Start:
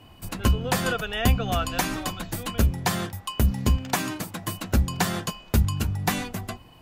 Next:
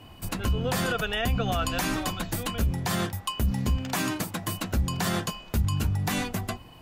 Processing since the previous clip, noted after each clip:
brickwall limiter −19.5 dBFS, peak gain reduction 11 dB
level +2 dB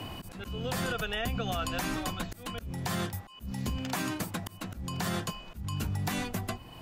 volume swells 394 ms
multiband upward and downward compressor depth 70%
level −4.5 dB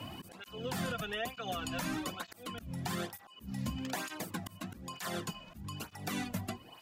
through-zero flanger with one copy inverted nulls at 1.1 Hz, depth 2.7 ms
level −1.5 dB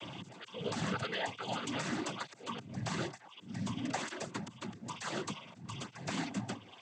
cochlear-implant simulation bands 16
level +1 dB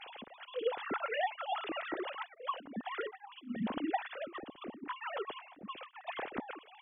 three sine waves on the formant tracks

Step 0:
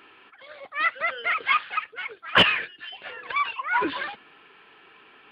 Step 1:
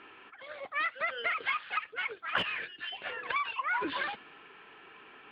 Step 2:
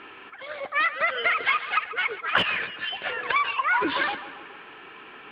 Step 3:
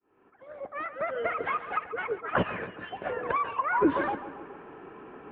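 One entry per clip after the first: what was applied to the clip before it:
low-pass that shuts in the quiet parts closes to 3,000 Hz, open at −20 dBFS; downward compressor 16 to 1, threshold −28 dBFS, peak gain reduction 17.5 dB
feedback echo with a low-pass in the loop 139 ms, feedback 60%, low-pass 3,000 Hz, level −13 dB; level +8.5 dB
fade in at the beginning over 1.47 s; Bessel low-pass filter 570 Hz, order 2; level +6.5 dB

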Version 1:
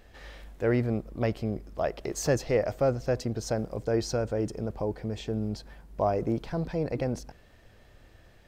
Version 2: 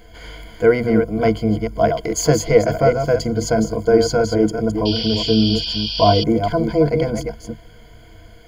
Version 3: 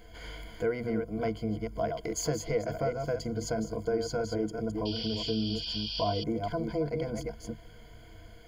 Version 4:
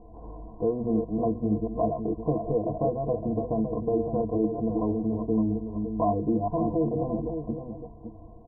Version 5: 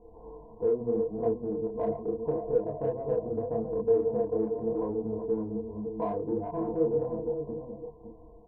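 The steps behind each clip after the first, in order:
delay that plays each chunk backwards 209 ms, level −6.5 dB; sound drawn into the spectrogram noise, 0:04.85–0:06.24, 2,400–5,800 Hz −36 dBFS; EQ curve with evenly spaced ripples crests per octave 1.8, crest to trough 18 dB; level +7.5 dB
downward compressor 2 to 1, threshold −27 dBFS, peak gain reduction 11 dB; level −7 dB
Chebyshev low-pass with heavy ripple 1,100 Hz, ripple 6 dB; single-tap delay 561 ms −8 dB; level +8 dB
in parallel at −4.5 dB: soft clipping −23 dBFS, distortion −13 dB; on the sum: hollow resonant body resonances 460/890 Hz, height 12 dB, ringing for 40 ms; multi-voice chorus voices 2, 0.79 Hz, delay 29 ms, depth 4.7 ms; level −8.5 dB

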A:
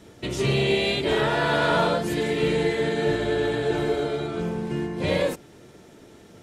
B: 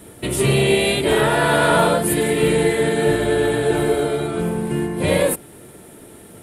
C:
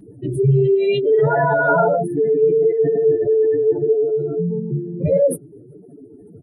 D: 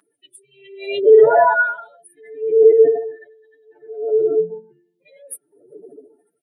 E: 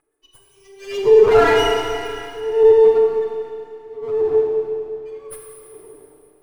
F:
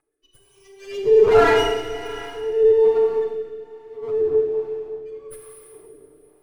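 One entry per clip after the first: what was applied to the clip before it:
high shelf with overshoot 7,700 Hz +10 dB, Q 3; level +6 dB
expanding power law on the bin magnitudes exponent 3.5; comb filter 7.1 ms, depth 50%
auto-filter high-pass sine 0.64 Hz 420–3,700 Hz; level −1 dB
lower of the sound and its delayed copy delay 2.4 ms; four-comb reverb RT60 2.7 s, combs from 28 ms, DRR −0.5 dB; level −3.5 dB
rotating-speaker cabinet horn 1.2 Hz; level −1 dB

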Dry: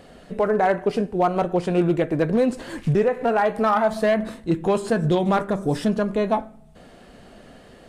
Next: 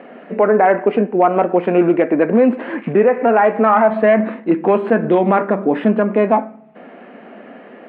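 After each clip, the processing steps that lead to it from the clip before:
elliptic band-pass filter 220–2,400 Hz, stop band 40 dB
in parallel at +1.5 dB: brickwall limiter −17.5 dBFS, peak gain reduction 9.5 dB
on the sum: level +3.5 dB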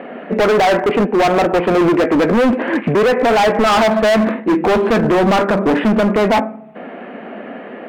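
hard clipping −18 dBFS, distortion −5 dB
level +7.5 dB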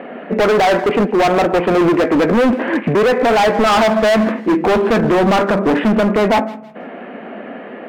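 feedback echo with a high-pass in the loop 161 ms, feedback 31%, level −19.5 dB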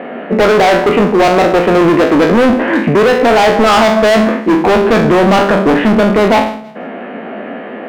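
peak hold with a decay on every bin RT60 0.47 s
in parallel at −1.5 dB: brickwall limiter −10 dBFS, peak gain reduction 7 dB
on the sum: level −1 dB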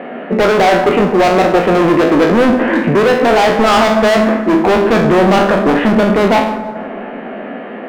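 dense smooth reverb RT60 2.7 s, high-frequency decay 0.3×, DRR 9.5 dB
level −2 dB

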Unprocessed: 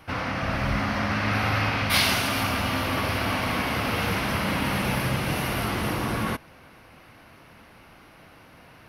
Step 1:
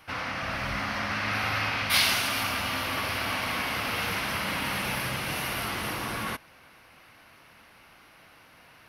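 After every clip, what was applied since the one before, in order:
tilt shelving filter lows −5 dB, about 760 Hz
level −5 dB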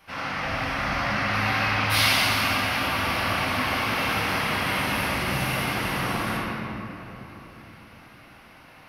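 rectangular room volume 190 cubic metres, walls hard, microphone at 1.2 metres
level −4 dB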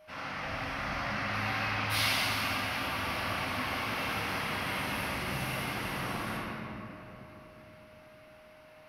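steady tone 620 Hz −46 dBFS
level −8.5 dB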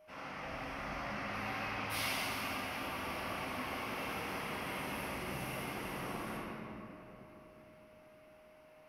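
graphic EQ with 15 bands 100 Hz −7 dB, 400 Hz +4 dB, 1,600 Hz −4 dB, 4,000 Hz −7 dB
level −5 dB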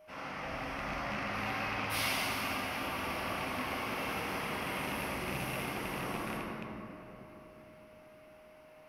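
loose part that buzzes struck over −43 dBFS, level −33 dBFS
level +3.5 dB

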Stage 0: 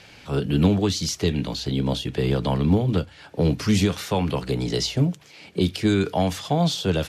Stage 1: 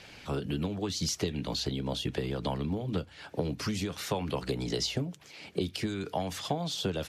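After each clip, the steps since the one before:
downward compressor, threshold −26 dBFS, peak gain reduction 13 dB
harmonic and percussive parts rebalanced harmonic −6 dB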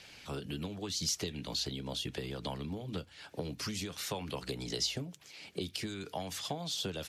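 high-shelf EQ 2,300 Hz +8.5 dB
level −7.5 dB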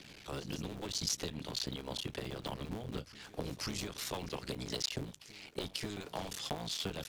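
sub-harmonics by changed cycles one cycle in 3, muted
backwards echo 540 ms −18 dB

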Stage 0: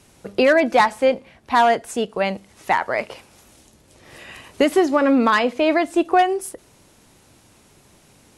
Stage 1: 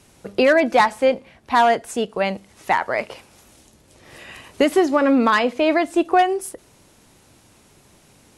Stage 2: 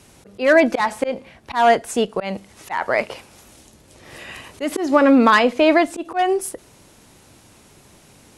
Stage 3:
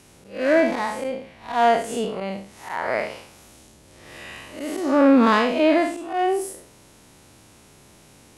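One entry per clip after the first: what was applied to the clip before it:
no processing that can be heard
volume swells 163 ms; harmonic generator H 8 −43 dB, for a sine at −4.5 dBFS; level +3.5 dB
spectrum smeared in time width 145 ms

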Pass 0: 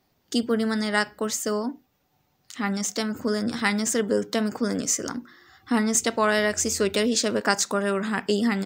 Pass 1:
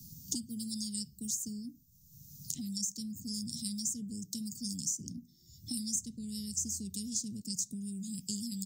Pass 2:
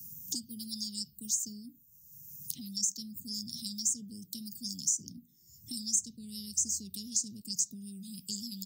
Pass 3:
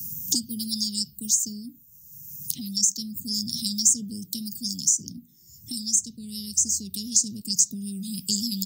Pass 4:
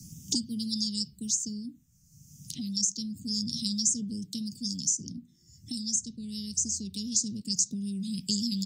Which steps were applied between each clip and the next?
elliptic band-stop filter 170–6,200 Hz, stop band 70 dB; multiband upward and downward compressor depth 100%; level −5 dB
phaser swept by the level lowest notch 570 Hz, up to 3,100 Hz, full sweep at −31 dBFS; spectral tilt +2 dB per octave
speech leveller 2 s; level +9 dB
high-frequency loss of the air 85 metres

